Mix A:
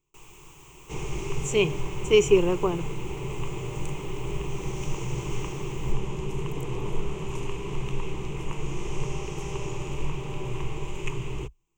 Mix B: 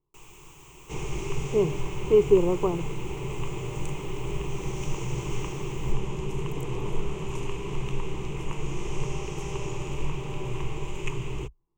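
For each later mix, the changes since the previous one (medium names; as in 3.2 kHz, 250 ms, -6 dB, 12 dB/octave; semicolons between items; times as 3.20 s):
speech: add Savitzky-Golay filter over 65 samples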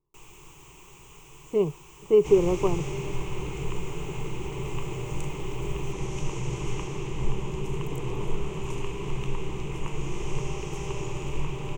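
second sound: entry +1.35 s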